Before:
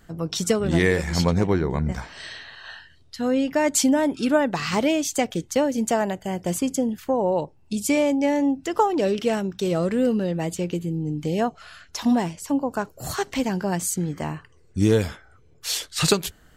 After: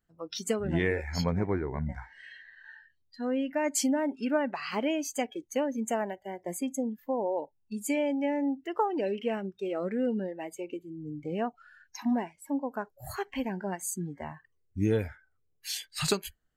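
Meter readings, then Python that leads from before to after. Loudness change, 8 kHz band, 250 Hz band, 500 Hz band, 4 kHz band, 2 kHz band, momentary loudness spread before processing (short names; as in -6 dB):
-8.5 dB, -9.0 dB, -8.5 dB, -8.0 dB, -9.5 dB, -8.0 dB, 11 LU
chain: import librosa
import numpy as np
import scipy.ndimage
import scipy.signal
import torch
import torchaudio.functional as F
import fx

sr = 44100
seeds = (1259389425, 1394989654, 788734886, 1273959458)

y = fx.noise_reduce_blind(x, sr, reduce_db=20)
y = F.gain(torch.from_numpy(y), -8.0).numpy()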